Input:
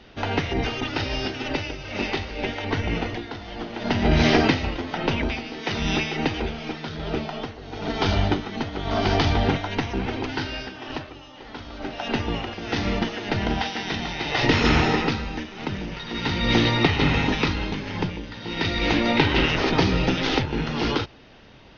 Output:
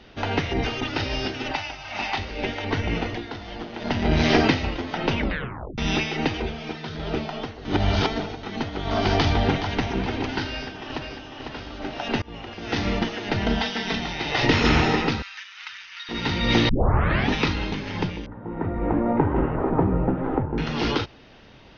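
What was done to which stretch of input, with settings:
1.51–2.18 s: resonant low shelf 600 Hz -8 dB, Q 3
3.57–4.30 s: AM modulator 160 Hz, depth 30%
5.19 s: tape stop 0.59 s
6.37–6.95 s: comb of notches 280 Hz
7.65–8.43 s: reverse
9.15–9.97 s: echo throw 420 ms, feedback 45%, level -11 dB
10.51–11.29 s: echo throw 500 ms, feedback 55%, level -5.5 dB
12.22–12.72 s: fade in, from -23.5 dB
13.46–13.99 s: comb 4.5 ms
15.22–16.09 s: inverse Chebyshev high-pass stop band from 640 Hz
16.69 s: tape start 0.63 s
18.26–20.58 s: low-pass 1.2 kHz 24 dB/octave

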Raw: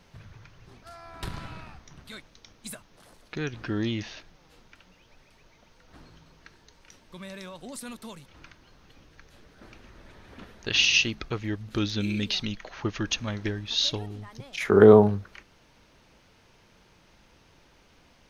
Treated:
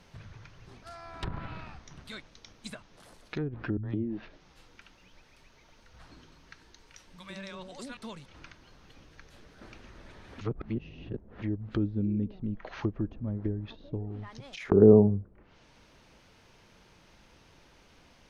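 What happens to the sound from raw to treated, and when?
3.77–7.97 s: three bands offset in time lows, highs, mids 60/160 ms, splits 160/570 Hz
10.41–11.42 s: reverse
14.26–14.72 s: compression, threshold -39 dBFS
whole clip: low-pass that closes with the level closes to 380 Hz, closed at -27 dBFS

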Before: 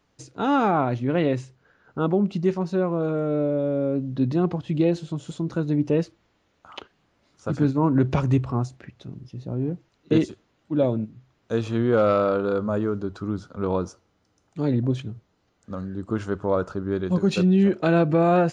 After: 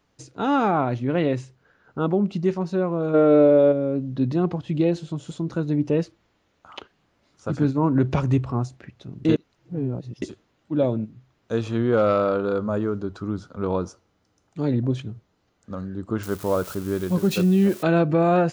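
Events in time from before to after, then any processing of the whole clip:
3.14–3.72 s: time-frequency box 290–5200 Hz +10 dB
9.25–10.22 s: reverse
16.23–17.83 s: zero-crossing glitches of -27 dBFS

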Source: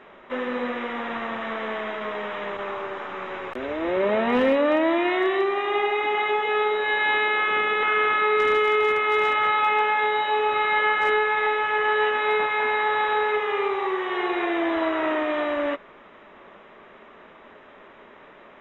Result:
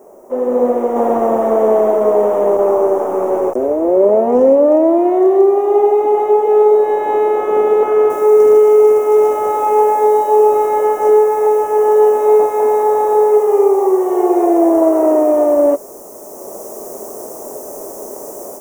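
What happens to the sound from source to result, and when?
0.96–3.51 s: gain +3.5 dB
8.10 s: noise floor step -65 dB -51 dB
whole clip: FFT filter 170 Hz 0 dB, 400 Hz +12 dB, 720 Hz +10 dB, 1.7 kHz -17 dB, 3.9 kHz -23 dB, 5.9 kHz +7 dB; level rider; trim -1 dB

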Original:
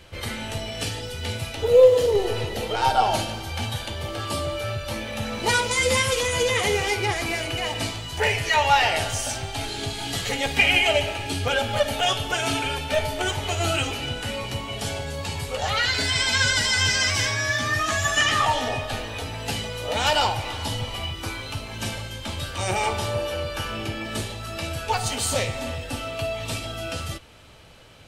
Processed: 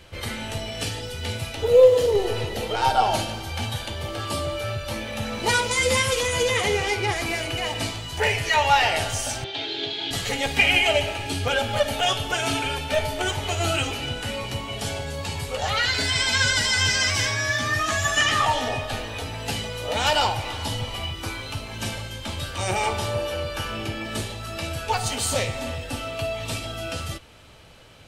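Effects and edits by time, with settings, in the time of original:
6.62–7.08 s: treble shelf 10 kHz -8 dB
9.44–10.11 s: cabinet simulation 230–4500 Hz, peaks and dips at 230 Hz -10 dB, 350 Hz +8 dB, 780 Hz -5 dB, 1.2 kHz -8 dB, 3.5 kHz +9 dB

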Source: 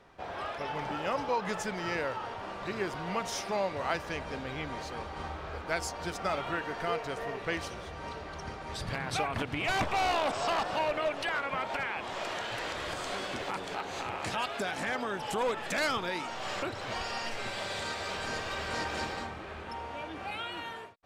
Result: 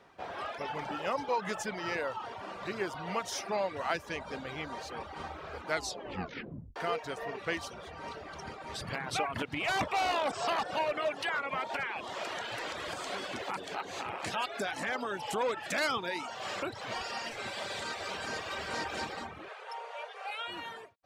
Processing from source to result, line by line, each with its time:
5.69 s: tape stop 1.07 s
19.48–20.48 s: brick-wall FIR band-pass 400–12000 Hz
whole clip: high-pass 140 Hz 6 dB/octave; reverb removal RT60 0.66 s

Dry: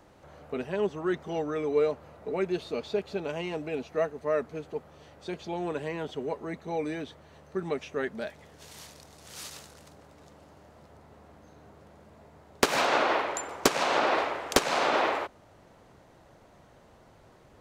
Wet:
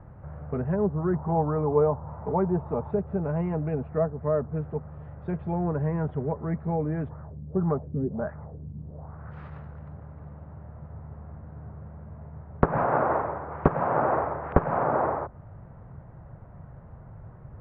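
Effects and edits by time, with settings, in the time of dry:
1.13–2.91 s: peaking EQ 920 Hz +13 dB 0.57 oct
7.08–9.30 s: LFO low-pass sine 2.4 Hz -> 0.85 Hz 230–1500 Hz
12.73–14.83 s: treble shelf 3.4 kHz +10 dB
whole clip: low-pass that closes with the level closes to 1.1 kHz, closed at -27.5 dBFS; low-pass 1.6 kHz 24 dB/octave; resonant low shelf 200 Hz +12 dB, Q 1.5; trim +3.5 dB

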